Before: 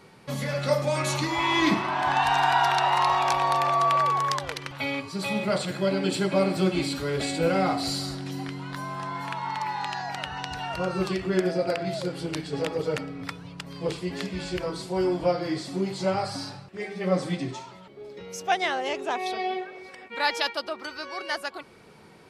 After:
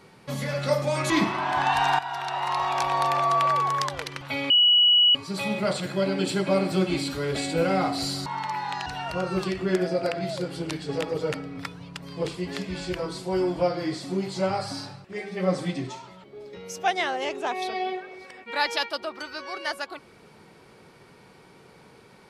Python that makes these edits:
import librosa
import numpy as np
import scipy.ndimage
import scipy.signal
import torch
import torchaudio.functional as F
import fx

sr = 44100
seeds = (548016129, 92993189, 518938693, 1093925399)

y = fx.edit(x, sr, fx.cut(start_s=1.1, length_s=0.5),
    fx.fade_in_from(start_s=2.49, length_s=1.06, floor_db=-14.0),
    fx.insert_tone(at_s=5.0, length_s=0.65, hz=2930.0, db=-14.5),
    fx.cut(start_s=8.11, length_s=1.27),
    fx.cut(start_s=9.98, length_s=0.52), tone=tone)